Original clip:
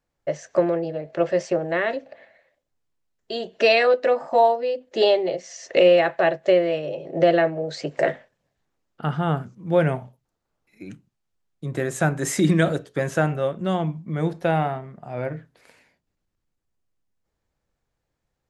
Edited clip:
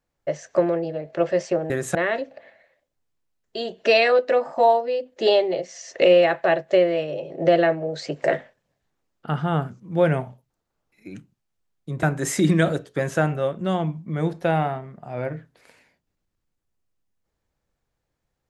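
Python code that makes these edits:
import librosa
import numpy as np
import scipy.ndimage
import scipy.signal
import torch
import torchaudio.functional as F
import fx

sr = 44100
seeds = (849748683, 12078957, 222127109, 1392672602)

y = fx.edit(x, sr, fx.move(start_s=11.78, length_s=0.25, to_s=1.7), tone=tone)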